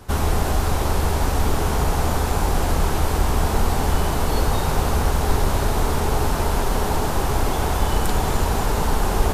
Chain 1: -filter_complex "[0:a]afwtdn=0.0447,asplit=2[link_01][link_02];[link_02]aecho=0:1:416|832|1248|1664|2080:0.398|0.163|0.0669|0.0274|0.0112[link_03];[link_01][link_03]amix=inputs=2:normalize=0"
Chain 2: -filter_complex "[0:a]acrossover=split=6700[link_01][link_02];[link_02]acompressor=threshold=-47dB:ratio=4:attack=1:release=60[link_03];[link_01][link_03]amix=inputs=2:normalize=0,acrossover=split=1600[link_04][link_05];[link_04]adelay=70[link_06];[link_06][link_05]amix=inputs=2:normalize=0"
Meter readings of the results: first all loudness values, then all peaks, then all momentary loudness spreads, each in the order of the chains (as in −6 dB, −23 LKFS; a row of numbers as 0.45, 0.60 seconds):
−23.0, −23.0 LKFS; −6.5, −6.5 dBFS; 1, 1 LU